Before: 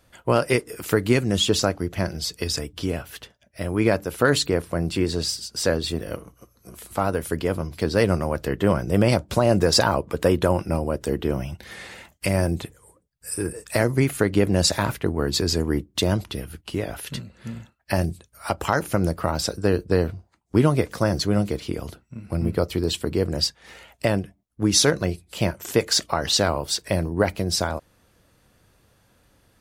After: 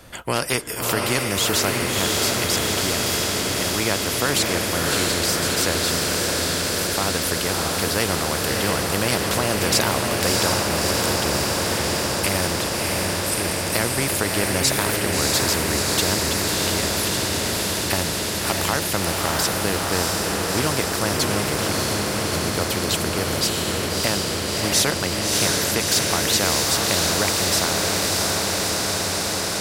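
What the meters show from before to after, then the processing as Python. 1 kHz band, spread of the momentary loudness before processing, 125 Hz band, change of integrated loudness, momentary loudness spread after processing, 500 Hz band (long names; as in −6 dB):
+4.5 dB, 14 LU, −2.0 dB, +3.0 dB, 4 LU, −0.5 dB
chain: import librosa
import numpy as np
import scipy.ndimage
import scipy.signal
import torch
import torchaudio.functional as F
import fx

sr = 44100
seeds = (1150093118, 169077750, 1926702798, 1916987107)

p1 = x + fx.echo_diffused(x, sr, ms=652, feedback_pct=74, wet_db=-3.0, dry=0)
y = fx.spectral_comp(p1, sr, ratio=2.0)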